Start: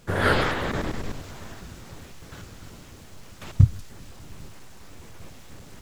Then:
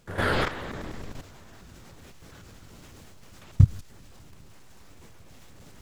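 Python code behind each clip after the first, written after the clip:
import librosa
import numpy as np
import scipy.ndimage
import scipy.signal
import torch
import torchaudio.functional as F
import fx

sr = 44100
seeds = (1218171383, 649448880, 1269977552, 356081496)

y = fx.level_steps(x, sr, step_db=12)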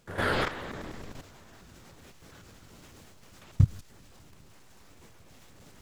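y = fx.low_shelf(x, sr, hz=130.0, db=-4.5)
y = y * 10.0 ** (-2.0 / 20.0)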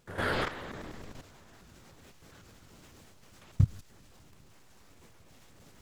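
y = fx.vibrato(x, sr, rate_hz=4.0, depth_cents=36.0)
y = y * 10.0 ** (-3.0 / 20.0)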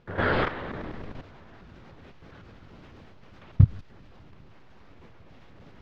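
y = fx.air_absorb(x, sr, metres=290.0)
y = y * 10.0 ** (7.5 / 20.0)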